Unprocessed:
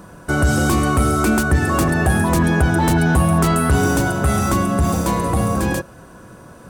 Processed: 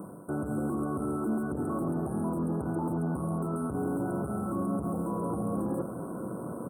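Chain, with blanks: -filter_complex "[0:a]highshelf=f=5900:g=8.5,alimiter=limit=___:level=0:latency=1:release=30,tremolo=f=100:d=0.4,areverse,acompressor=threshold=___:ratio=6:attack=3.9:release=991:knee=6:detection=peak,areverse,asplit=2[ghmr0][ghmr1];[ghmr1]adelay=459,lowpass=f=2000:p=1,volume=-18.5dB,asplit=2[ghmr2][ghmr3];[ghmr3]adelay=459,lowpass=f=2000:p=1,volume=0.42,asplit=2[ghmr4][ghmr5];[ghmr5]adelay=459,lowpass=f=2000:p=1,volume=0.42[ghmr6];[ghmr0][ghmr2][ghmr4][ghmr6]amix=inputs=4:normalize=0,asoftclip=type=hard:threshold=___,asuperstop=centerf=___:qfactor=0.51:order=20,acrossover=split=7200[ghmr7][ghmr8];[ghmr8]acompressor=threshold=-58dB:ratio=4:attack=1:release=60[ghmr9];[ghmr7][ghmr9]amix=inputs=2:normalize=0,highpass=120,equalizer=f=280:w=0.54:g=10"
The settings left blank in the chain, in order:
-11.5dB, -30dB, -33dB, 3600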